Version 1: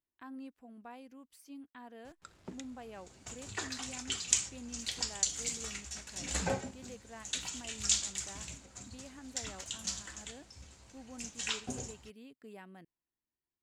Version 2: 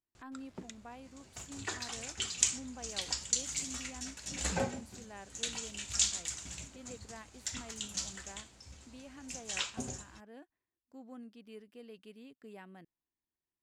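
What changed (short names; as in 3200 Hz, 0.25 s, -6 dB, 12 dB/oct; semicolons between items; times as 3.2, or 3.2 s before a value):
speech: add high shelf 11000 Hz -5.5 dB; background: entry -1.90 s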